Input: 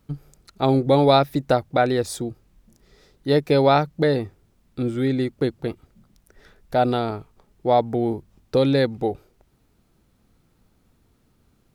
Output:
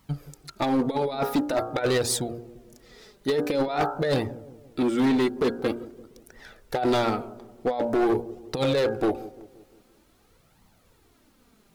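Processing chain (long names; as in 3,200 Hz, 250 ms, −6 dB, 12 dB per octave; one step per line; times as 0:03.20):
low-shelf EQ 180 Hz −11.5 dB
hum removal 58.8 Hz, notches 28
compressor whose output falls as the input rises −23 dBFS, ratio −0.5
flanger 0.47 Hz, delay 0.9 ms, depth 4.2 ms, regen +18%
hard clipping −25.5 dBFS, distortion −11 dB
on a send: delay with a low-pass on its return 173 ms, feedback 51%, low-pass 580 Hz, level −16 dB
on the sum: level +7 dB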